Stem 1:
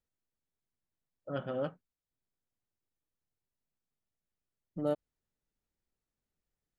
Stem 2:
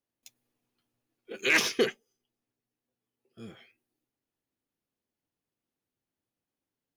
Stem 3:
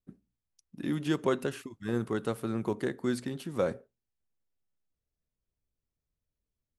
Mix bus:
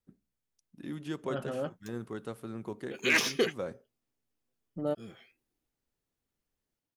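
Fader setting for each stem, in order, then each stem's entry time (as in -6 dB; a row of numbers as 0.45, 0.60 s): 0.0, -2.0, -8.0 dB; 0.00, 1.60, 0.00 s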